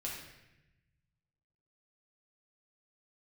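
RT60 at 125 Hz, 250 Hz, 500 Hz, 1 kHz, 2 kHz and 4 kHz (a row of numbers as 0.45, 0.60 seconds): 2.1, 1.4, 1.0, 0.90, 1.1, 0.85 seconds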